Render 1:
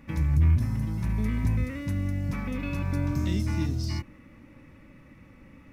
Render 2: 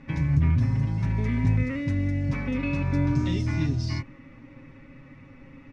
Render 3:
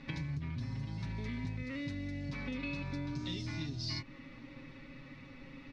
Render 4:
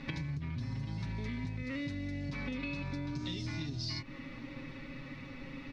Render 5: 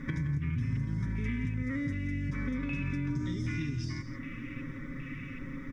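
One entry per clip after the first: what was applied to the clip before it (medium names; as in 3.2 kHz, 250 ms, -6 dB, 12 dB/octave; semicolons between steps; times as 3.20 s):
Bessel low-pass 4.8 kHz, order 4; comb 7.4 ms, depth 69%; trim +2 dB
peaking EQ 82 Hz -7.5 dB 0.81 oct; compression 4:1, threshold -35 dBFS, peak gain reduction 14 dB; peaking EQ 4.1 kHz +14.5 dB 0.89 oct; trim -3 dB
compression, threshold -40 dBFS, peak gain reduction 6.5 dB; trim +5.5 dB
static phaser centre 1.8 kHz, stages 4; LFO notch square 1.3 Hz 730–2700 Hz; delay 170 ms -11.5 dB; trim +6.5 dB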